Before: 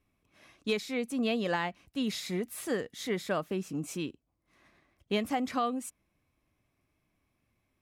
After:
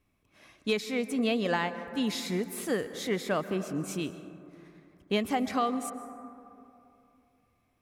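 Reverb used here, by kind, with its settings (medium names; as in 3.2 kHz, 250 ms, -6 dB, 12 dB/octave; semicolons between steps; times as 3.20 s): plate-style reverb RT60 2.8 s, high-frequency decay 0.25×, pre-delay 115 ms, DRR 11 dB; trim +2 dB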